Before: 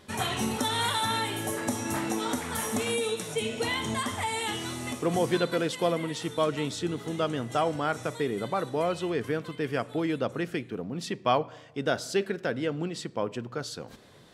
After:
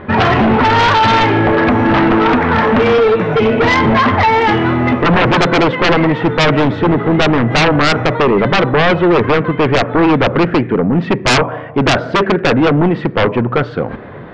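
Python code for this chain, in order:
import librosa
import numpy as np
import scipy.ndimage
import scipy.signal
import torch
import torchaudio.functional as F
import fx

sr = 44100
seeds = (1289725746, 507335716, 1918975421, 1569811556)

y = scipy.signal.sosfilt(scipy.signal.butter(4, 2000.0, 'lowpass', fs=sr, output='sos'), x)
y = fx.fold_sine(y, sr, drive_db=16, ceiling_db=-11.5)
y = y * 10.0 ** (4.5 / 20.0)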